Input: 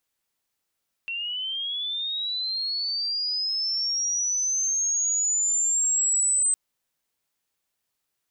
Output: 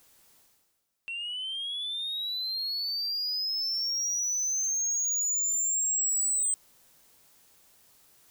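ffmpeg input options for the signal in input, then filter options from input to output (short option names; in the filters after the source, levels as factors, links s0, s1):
-f lavfi -i "aevalsrc='pow(10,(-28+9*t/5.46)/20)*sin(2*PI*(2700*t+5500*t*t/(2*5.46)))':d=5.46:s=44100"
-af "areverse,acompressor=mode=upward:threshold=0.00794:ratio=2.5,areverse,asoftclip=type=tanh:threshold=0.0596,equalizer=f=2300:w=0.63:g=-4"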